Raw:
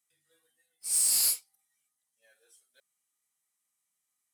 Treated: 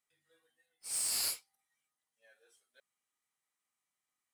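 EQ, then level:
low-shelf EQ 320 Hz −4.5 dB
high-shelf EQ 4,100 Hz −8 dB
parametric band 12,000 Hz −5.5 dB 1.8 octaves
+2.0 dB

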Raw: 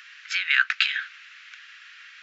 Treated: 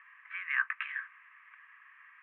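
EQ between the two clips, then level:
low-pass filter 1,300 Hz 24 dB per octave
high-frequency loss of the air 120 metres
phaser with its sweep stopped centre 950 Hz, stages 8
+8.0 dB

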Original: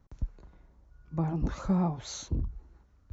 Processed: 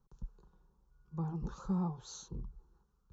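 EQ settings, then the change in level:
phaser with its sweep stopped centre 420 Hz, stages 8
−6.5 dB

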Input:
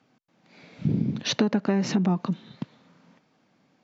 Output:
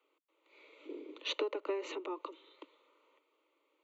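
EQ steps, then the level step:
Butterworth high-pass 290 Hz 96 dB per octave
phaser with its sweep stopped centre 1,100 Hz, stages 8
−5.5 dB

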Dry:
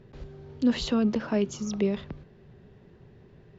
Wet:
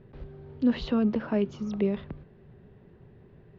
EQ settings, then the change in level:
high-frequency loss of the air 270 metres
0.0 dB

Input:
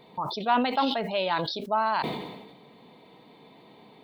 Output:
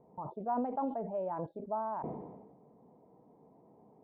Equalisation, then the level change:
transistor ladder low-pass 1,000 Hz, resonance 25%
high-frequency loss of the air 160 metres
parametric band 61 Hz +6.5 dB 1.9 octaves
−3.0 dB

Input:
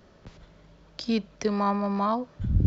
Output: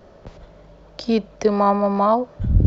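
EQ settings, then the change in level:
low-shelf EQ 97 Hz +7.5 dB
parametric band 610 Hz +10.5 dB 1.6 octaves
+2.0 dB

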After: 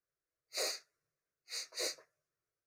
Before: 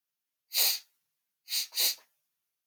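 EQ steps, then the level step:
low-pass filter 6,300 Hz 12 dB per octave
tilt shelving filter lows +7.5 dB
phaser with its sweep stopped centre 860 Hz, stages 6
+4.0 dB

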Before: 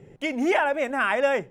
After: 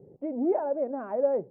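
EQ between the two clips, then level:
high-pass filter 160 Hz 6 dB per octave
transistor ladder low-pass 740 Hz, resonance 25%
+3.0 dB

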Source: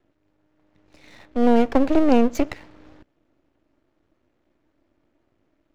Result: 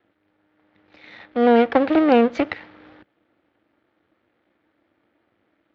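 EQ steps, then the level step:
loudspeaker in its box 140–3,600 Hz, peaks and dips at 150 Hz −10 dB, 260 Hz −8 dB, 380 Hz −7 dB, 620 Hz −7 dB, 1,000 Hz −6 dB, 2,700 Hz −4 dB
low-shelf EQ 220 Hz −4 dB
+8.5 dB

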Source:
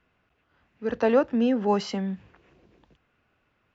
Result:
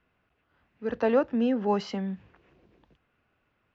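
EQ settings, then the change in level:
Bessel low-pass filter 4,700 Hz, order 2
−2.5 dB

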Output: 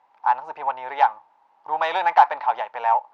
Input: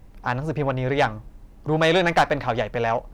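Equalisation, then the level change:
high-pass with resonance 880 Hz, resonance Q 9.8
low-pass filter 3,800 Hz 12 dB per octave
−6.5 dB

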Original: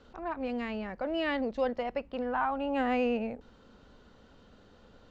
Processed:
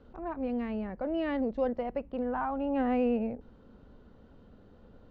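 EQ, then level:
low-pass filter 2,400 Hz 6 dB per octave
tilt shelving filter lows +5 dB, about 680 Hz
−1.0 dB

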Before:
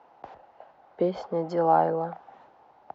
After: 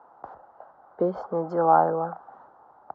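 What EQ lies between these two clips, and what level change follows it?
high shelf with overshoot 1,800 Hz −10.5 dB, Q 3
0.0 dB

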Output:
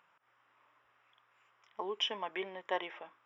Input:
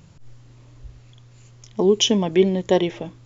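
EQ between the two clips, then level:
Savitzky-Golay smoothing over 25 samples
high-pass with resonance 1,200 Hz, resonance Q 1.7
high-shelf EQ 2,000 Hz −9 dB
−4.5 dB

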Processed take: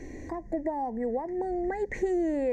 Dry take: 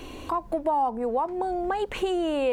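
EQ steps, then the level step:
drawn EQ curve 340 Hz 0 dB, 820 Hz −8 dB, 1,300 Hz −26 dB, 1,900 Hz +10 dB, 2,900 Hz −29 dB, 6,300 Hz 0 dB, 10,000 Hz −20 dB
0.0 dB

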